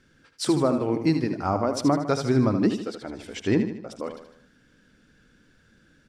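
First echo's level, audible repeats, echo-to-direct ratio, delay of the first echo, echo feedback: -8.5 dB, 5, -7.5 dB, 77 ms, 48%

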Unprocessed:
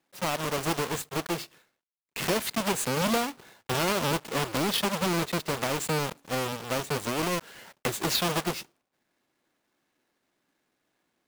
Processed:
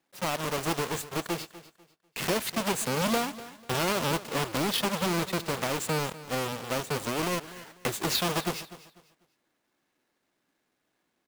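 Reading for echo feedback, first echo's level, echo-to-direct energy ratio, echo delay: 28%, -16.5 dB, -16.0 dB, 247 ms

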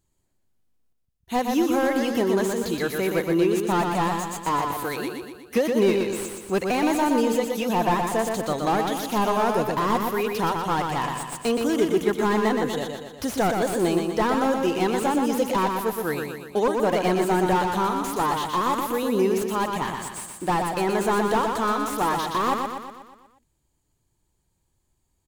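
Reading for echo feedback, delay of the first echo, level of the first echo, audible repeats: 54%, 121 ms, -4.5 dB, 6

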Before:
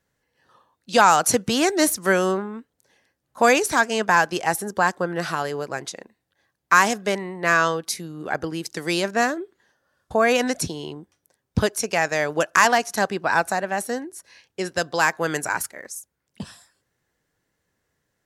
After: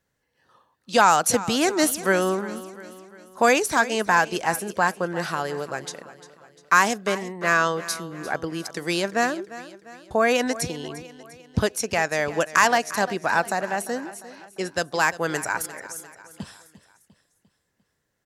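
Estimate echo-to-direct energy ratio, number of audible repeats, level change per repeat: -15.0 dB, 4, -6.0 dB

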